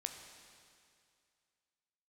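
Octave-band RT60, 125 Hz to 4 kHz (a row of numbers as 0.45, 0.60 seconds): 2.3, 2.2, 2.3, 2.3, 2.3, 2.3 seconds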